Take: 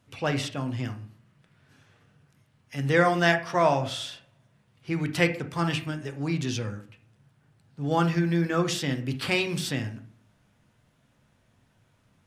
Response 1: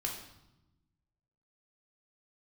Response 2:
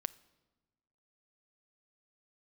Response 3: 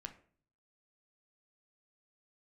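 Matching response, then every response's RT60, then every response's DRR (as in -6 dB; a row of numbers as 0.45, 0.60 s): 3; 0.90, 1.2, 0.50 s; -1.5, 15.5, 6.0 dB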